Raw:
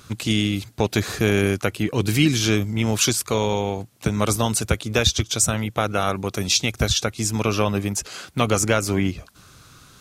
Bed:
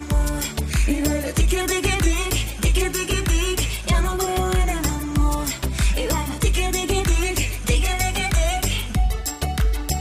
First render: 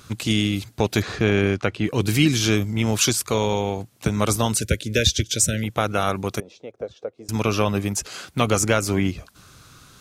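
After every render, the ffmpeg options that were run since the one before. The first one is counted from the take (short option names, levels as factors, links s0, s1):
-filter_complex "[0:a]asettb=1/sr,asplit=3[s0][s1][s2];[s0]atrim=end=1.024[s3];[s1]atrim=start=1.02:end=1.84,asetpts=PTS-STARTPTS,afade=t=in:d=0.004:c=qsin,afade=t=out:st=0.816:d=0.004:c=qsin,lowpass=4300[s4];[s2]atrim=start=1.836[s5];[s3][s4]acrossfade=d=0.004:c1=hsin:c2=qsin[s6];[s6][s5]acrossfade=d=0.004:c1=qsin:c2=hsin,asettb=1/sr,asplit=3[s7][s8][s9];[s7]atrim=end=4.574[s10];[s8]atrim=start=4.57:end=5.64,asetpts=PTS-STARTPTS,afade=t=in:d=0.004:c=qsin,afade=t=out:st=1.066:d=0.004:c=qsin,asuperstop=centerf=950:order=12:qfactor=1.1[s11];[s9]atrim=start=5.636[s12];[s10][s11]acrossfade=d=0.004:c1=hsin:c2=qsin[s13];[s13][s12]acrossfade=d=0.004:c1=qsin:c2=hsin,asettb=1/sr,asplit=3[s14][s15][s16];[s14]atrim=end=6.404[s17];[s15]atrim=start=6.4:end=7.29,asetpts=PTS-STARTPTS,afade=t=in:d=0.004:c=qsin,afade=t=out:st=0.886:d=0.004:c=qsin,bandpass=f=500:t=q:w=4.3[s18];[s16]atrim=start=7.286[s19];[s17][s18]acrossfade=d=0.004:c1=hsin:c2=qsin[s20];[s20][s19]acrossfade=d=0.004:c1=qsin:c2=hsin"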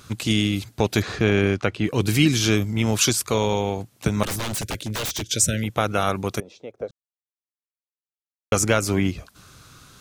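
-filter_complex "[0:a]asettb=1/sr,asplit=3[s0][s1][s2];[s0]atrim=end=4.234[s3];[s1]atrim=start=4.23:end=5.26,asetpts=PTS-STARTPTS,afade=t=in:d=0.004:c=qsin,afade=t=out:st=1.026:d=0.004:c=qsin,aeval=exprs='0.0794*(abs(mod(val(0)/0.0794+3,4)-2)-1)':c=same[s4];[s2]atrim=start=5.256[s5];[s3][s4]acrossfade=d=0.004:c1=hsin:c2=qsin[s6];[s6][s5]acrossfade=d=0.004:c1=qsin:c2=hsin,asplit=3[s7][s8][s9];[s7]atrim=end=6.91,asetpts=PTS-STARTPTS,afade=t=out:st=6.906:d=0.004:c=hsin[s10];[s8]atrim=start=6.91:end=8.52,asetpts=PTS-STARTPTS,volume=0[s11];[s9]atrim=start=8.52,asetpts=PTS-STARTPTS,afade=t=in:d=0.004:c=hsin[s12];[s10][s11][s12]concat=n=3:v=0:a=1"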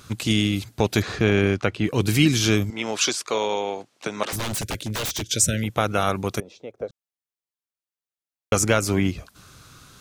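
-filter_complex "[0:a]asettb=1/sr,asplit=3[s0][s1][s2];[s0]atrim=end=2.704[s3];[s1]atrim=start=2.7:end=4.33,asetpts=PTS-STARTPTS,afade=t=in:d=0.004:c=qsin,afade=t=out:st=1.626:d=0.004:c=qsin,highpass=380,lowpass=6300[s4];[s2]atrim=start=4.326[s5];[s3][s4]acrossfade=d=0.004:c1=hsin:c2=qsin[s6];[s6][s5]acrossfade=d=0.004:c1=qsin:c2=hsin"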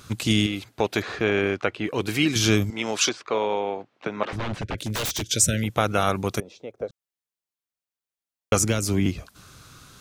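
-filter_complex "[0:a]asettb=1/sr,asplit=3[s0][s1][s2];[s0]atrim=end=0.464[s3];[s1]atrim=start=0.46:end=2.36,asetpts=PTS-STARTPTS,afade=t=in:d=0.004:c=qsin,afade=t=out:st=1.896:d=0.004:c=qsin,bass=f=250:g=-11,treble=f=4000:g=-8[s4];[s2]atrim=start=2.356[s5];[s3][s4]acrossfade=d=0.004:c1=hsin:c2=qsin[s6];[s6][s5]acrossfade=d=0.004:c1=qsin:c2=hsin,asettb=1/sr,asplit=3[s7][s8][s9];[s7]atrim=end=3.094[s10];[s8]atrim=start=3.09:end=4.78,asetpts=PTS-STARTPTS,afade=t=in:d=0.004:c=qsin,afade=t=out:st=1.686:d=0.004:c=qsin,lowpass=2400[s11];[s9]atrim=start=4.776[s12];[s10][s11]acrossfade=d=0.004:c1=hsin:c2=qsin[s13];[s13][s12]acrossfade=d=0.004:c1=qsin:c2=hsin,asettb=1/sr,asplit=3[s14][s15][s16];[s14]atrim=end=8.594[s17];[s15]atrim=start=8.59:end=9.06,asetpts=PTS-STARTPTS,afade=t=in:d=0.004:c=qsin,afade=t=out:st=0.466:d=0.004:c=qsin,acrossover=split=370|3000[s18][s19][s20];[s19]acompressor=threshold=0.00447:ratio=1.5:attack=3.2:release=140:knee=2.83:detection=peak[s21];[s18][s21][s20]amix=inputs=3:normalize=0[s22];[s16]atrim=start=9.056[s23];[s17][s22]acrossfade=d=0.004:c1=hsin:c2=qsin[s24];[s24][s23]acrossfade=d=0.004:c1=qsin:c2=hsin"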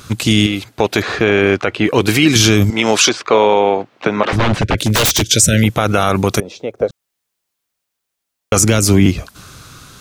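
-af "dynaudnorm=f=230:g=9:m=2.66,alimiter=level_in=2.99:limit=0.891:release=50:level=0:latency=1"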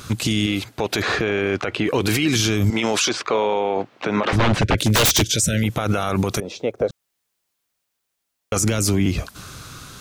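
-af "alimiter=limit=0.299:level=0:latency=1:release=50"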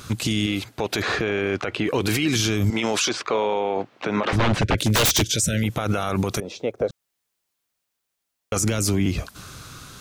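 -af "volume=0.75"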